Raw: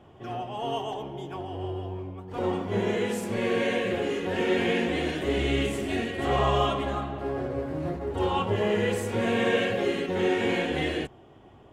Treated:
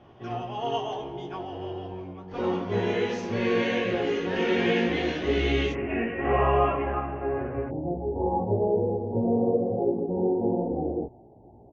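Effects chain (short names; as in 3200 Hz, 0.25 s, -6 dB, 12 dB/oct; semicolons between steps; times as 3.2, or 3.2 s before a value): Chebyshev low-pass 6300 Hz, order 6, from 5.72 s 2700 Hz, from 7.68 s 880 Hz; doubler 17 ms -4 dB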